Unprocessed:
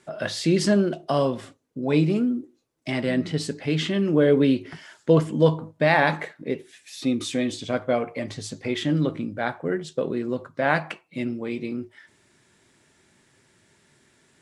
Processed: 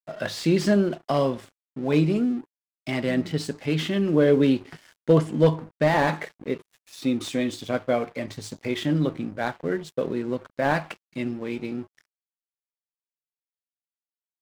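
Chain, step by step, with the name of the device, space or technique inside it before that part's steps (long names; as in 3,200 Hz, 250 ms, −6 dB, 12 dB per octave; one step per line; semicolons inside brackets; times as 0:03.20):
early transistor amplifier (dead-zone distortion −45 dBFS; slew-rate limiting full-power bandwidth 140 Hz)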